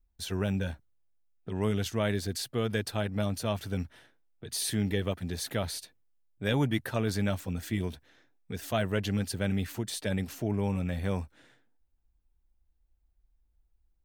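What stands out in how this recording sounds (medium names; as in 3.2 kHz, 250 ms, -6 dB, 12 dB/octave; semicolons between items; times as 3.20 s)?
noise floor -72 dBFS; spectral tilt -5.5 dB/octave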